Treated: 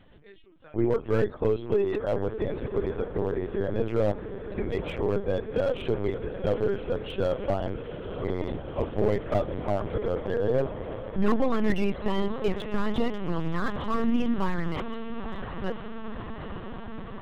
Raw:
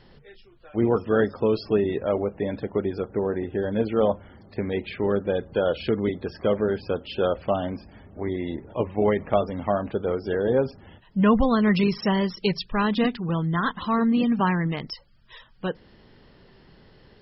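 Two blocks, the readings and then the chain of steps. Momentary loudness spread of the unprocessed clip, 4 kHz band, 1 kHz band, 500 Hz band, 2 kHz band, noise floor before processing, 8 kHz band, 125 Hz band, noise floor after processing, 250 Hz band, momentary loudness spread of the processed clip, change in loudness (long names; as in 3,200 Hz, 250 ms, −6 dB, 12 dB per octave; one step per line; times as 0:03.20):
11 LU, −6.5 dB, −5.5 dB, −3.0 dB, −5.5 dB, −54 dBFS, can't be measured, −2.5 dB, −43 dBFS, −5.5 dB, 10 LU, −4.5 dB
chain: feedback delay with all-pass diffusion 942 ms, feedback 76%, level −11 dB
linear-prediction vocoder at 8 kHz pitch kept
slew-rate limiting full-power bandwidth 75 Hz
level −2.5 dB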